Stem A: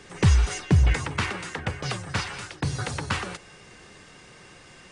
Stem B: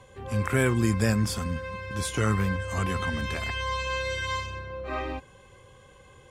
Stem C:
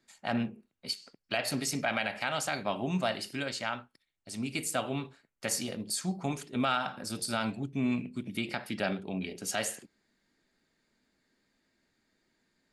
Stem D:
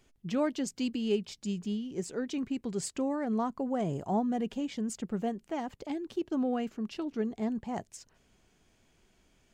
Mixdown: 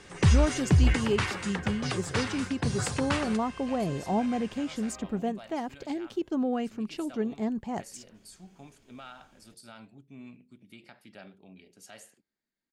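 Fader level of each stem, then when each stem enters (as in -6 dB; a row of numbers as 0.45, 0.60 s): -2.5, -18.0, -17.0, +2.0 dB; 0.00, 0.00, 2.35, 0.00 s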